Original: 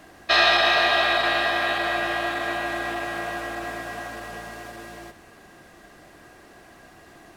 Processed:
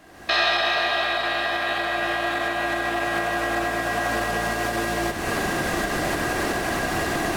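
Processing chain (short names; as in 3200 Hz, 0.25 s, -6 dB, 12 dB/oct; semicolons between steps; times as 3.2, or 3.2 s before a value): recorder AGC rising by 39 dB/s; gain -3 dB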